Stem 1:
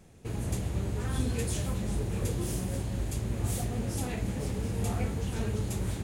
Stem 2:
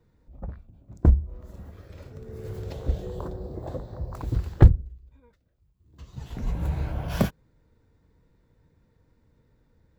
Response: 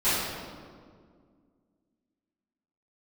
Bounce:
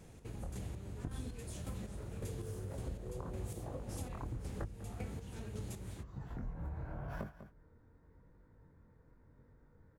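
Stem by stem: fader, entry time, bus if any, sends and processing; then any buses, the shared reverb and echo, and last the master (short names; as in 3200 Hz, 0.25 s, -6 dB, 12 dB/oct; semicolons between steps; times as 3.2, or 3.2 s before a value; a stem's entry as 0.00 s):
-0.5 dB, 0.00 s, no send, no echo send, chopper 1.8 Hz, depth 60%, duty 35%
+2.5 dB, 0.00 s, no send, echo send -18.5 dB, resonant high shelf 2200 Hz -11 dB, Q 1.5; compressor, threshold -25 dBFS, peak gain reduction 17 dB; chorus 0.83 Hz, delay 20 ms, depth 5.2 ms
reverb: off
echo: echo 0.197 s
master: compressor 3:1, threshold -43 dBFS, peak gain reduction 17 dB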